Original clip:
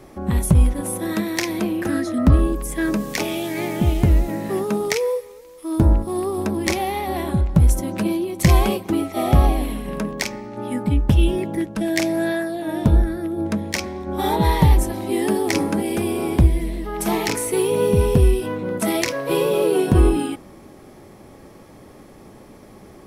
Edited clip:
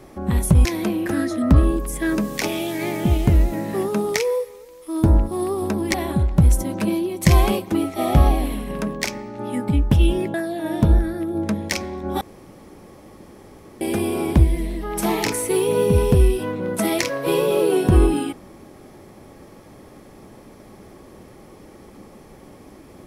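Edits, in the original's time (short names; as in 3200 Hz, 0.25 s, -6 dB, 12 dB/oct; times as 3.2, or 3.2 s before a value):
0.65–1.41 cut
6.7–7.12 cut
11.52–12.37 cut
14.24–15.84 room tone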